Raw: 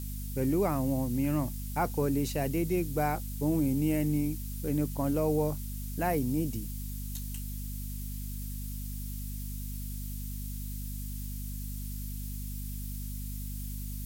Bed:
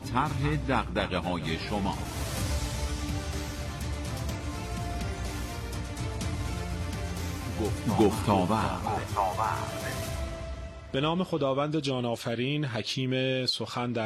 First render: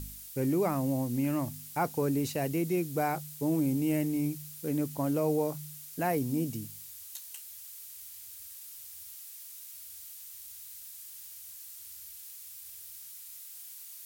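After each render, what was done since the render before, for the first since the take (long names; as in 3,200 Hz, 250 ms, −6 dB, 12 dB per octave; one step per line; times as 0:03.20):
hum removal 50 Hz, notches 5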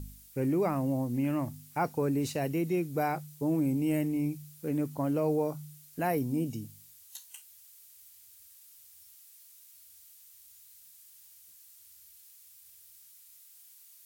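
noise reduction from a noise print 9 dB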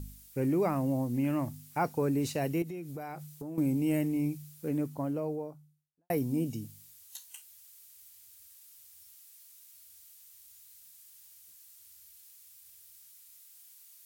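0:02.62–0:03.58: downward compressor, threshold −37 dBFS
0:04.46–0:06.10: fade out and dull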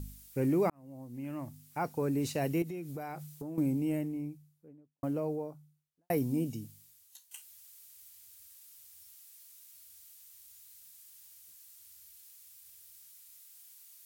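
0:00.70–0:02.52: fade in
0:03.21–0:05.03: fade out and dull
0:06.23–0:07.31: fade out, to −12 dB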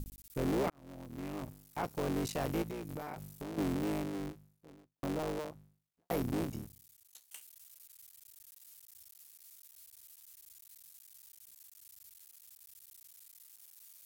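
sub-harmonics by changed cycles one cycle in 3, muted
soft clipping −25 dBFS, distortion −17 dB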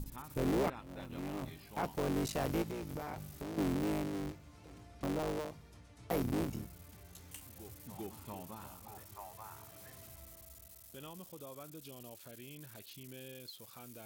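mix in bed −22.5 dB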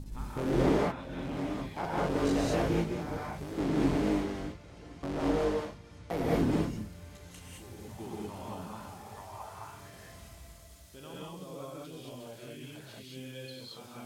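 high-frequency loss of the air 54 metres
reverb whose tail is shaped and stops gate 240 ms rising, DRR −6 dB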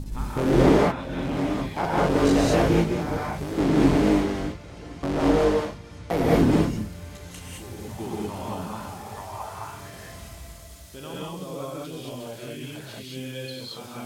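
level +9 dB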